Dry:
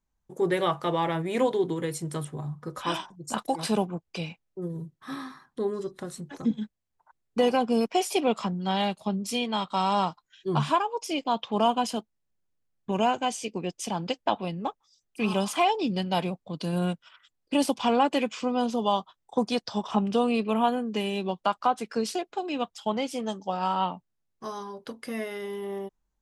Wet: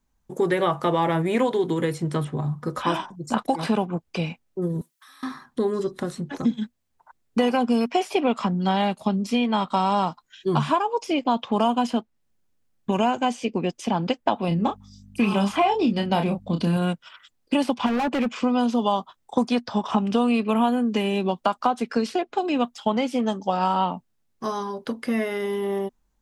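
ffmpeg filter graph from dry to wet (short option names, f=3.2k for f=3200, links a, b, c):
-filter_complex "[0:a]asettb=1/sr,asplit=3[a][b][c];[a]atrim=end=4.814[d];[b]atrim=start=4.81:end=5.23,asetpts=PTS-STARTPTS,afade=t=in:d=0.004:c=qsin,afade=t=out:st=0.416:d=0.004:c=qsin,highpass=1.4k,highshelf=f=6.3k:g=11.5,acompressor=threshold=-55dB:ratio=20:attack=3.2:release=140:knee=1:detection=peak[e];[c]atrim=start=5.226[f];[d][e]acrossfade=d=0.004:c1=hsin:c2=qsin[g];[g][f]acrossfade=d=0.004:c1=qsin:c2=hsin,asettb=1/sr,asplit=3[h][i][j];[h]atrim=end=14.484[k];[i]atrim=start=14.48:end=16.77,asetpts=PTS-STARTPTS,afade=t=in:d=0.004:c=qsin,afade=t=out:st=2.286:d=0.004:c=qsin,aeval=exprs='val(0)+0.00178*(sin(2*PI*50*n/s)+sin(2*PI*2*50*n/s)/2+sin(2*PI*3*50*n/s)/3+sin(2*PI*4*50*n/s)/4+sin(2*PI*5*50*n/s)/5)':c=same,equalizer=f=210:t=o:w=1.1:g=4.5,asplit=2[l][m];[m]adelay=30,volume=-6.5dB[n];[l][n]amix=inputs=2:normalize=0,atrim=end_sample=100989[o];[j]atrim=start=16.766[p];[k][o]acrossfade=d=0.004:c1=hsin:c2=qsin[q];[q][p]acrossfade=d=0.004:c1=qsin:c2=hsin,asettb=1/sr,asplit=3[r][s][t];[r]atrim=end=17.864[u];[s]atrim=start=17.86:end=18.36,asetpts=PTS-STARTPTS,afade=t=in:d=0.004:c=qsin,afade=t=out:st=0.496:d=0.004:c=qsin,lowpass=f=2.9k:p=1,asoftclip=type=hard:threshold=-28.5dB[v];[t]atrim=start=18.356[w];[u][v]acrossfade=d=0.004:c1=hsin:c2=qsin[x];[x][w]acrossfade=d=0.004:c1=qsin:c2=hsin,equalizer=f=240:w=7.6:g=7,acrossover=split=1000|2500|5100[y][z][aa][ab];[y]acompressor=threshold=-28dB:ratio=4[ac];[z]acompressor=threshold=-36dB:ratio=4[ad];[aa]acompressor=threshold=-53dB:ratio=4[ae];[ab]acompressor=threshold=-58dB:ratio=4[af];[ac][ad][ae][af]amix=inputs=4:normalize=0,volume=8dB"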